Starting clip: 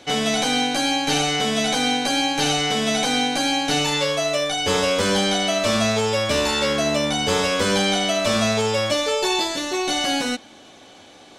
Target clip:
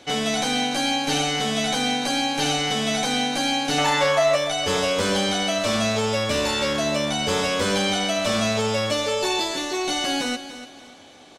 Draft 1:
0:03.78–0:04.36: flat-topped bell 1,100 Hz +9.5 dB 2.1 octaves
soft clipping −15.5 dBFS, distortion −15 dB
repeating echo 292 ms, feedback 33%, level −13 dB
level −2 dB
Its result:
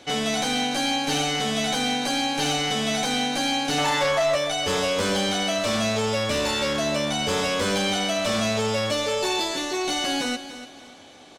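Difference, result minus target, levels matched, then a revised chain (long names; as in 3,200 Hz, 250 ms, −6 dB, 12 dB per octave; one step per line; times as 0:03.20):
soft clipping: distortion +10 dB
0:03.78–0:04.36: flat-topped bell 1,100 Hz +9.5 dB 2.1 octaves
soft clipping −8.5 dBFS, distortion −25 dB
repeating echo 292 ms, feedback 33%, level −13 dB
level −2 dB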